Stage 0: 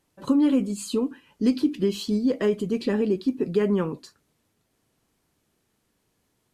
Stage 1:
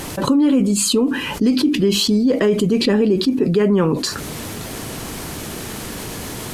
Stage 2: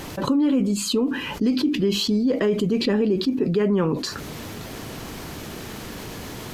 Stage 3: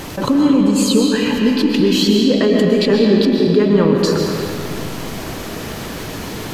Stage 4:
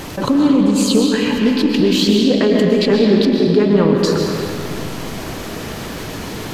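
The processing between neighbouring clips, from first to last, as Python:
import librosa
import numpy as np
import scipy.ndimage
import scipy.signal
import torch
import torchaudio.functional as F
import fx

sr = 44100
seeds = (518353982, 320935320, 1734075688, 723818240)

y1 = fx.env_flatten(x, sr, amount_pct=70)
y1 = F.gain(torch.from_numpy(y1), 3.5).numpy()
y2 = fx.peak_eq(y1, sr, hz=9500.0, db=-8.5, octaves=0.8)
y2 = F.gain(torch.from_numpy(y2), -5.0).numpy()
y3 = fx.rev_freeverb(y2, sr, rt60_s=2.8, hf_ratio=0.7, predelay_ms=85, drr_db=0.5)
y3 = F.gain(torch.from_numpy(y3), 5.5).numpy()
y4 = fx.doppler_dist(y3, sr, depth_ms=0.13)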